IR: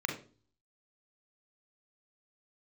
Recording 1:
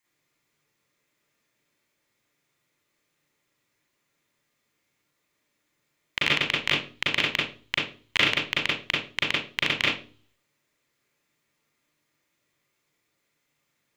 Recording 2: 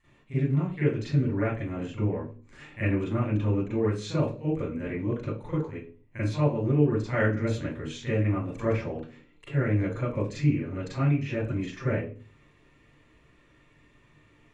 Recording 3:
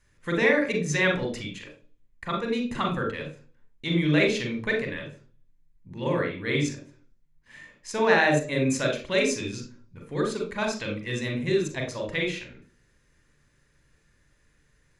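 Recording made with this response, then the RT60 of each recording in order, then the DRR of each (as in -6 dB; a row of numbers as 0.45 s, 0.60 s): 3; 0.40 s, 0.40 s, 0.40 s; -5.5 dB, -10.0 dB, 2.0 dB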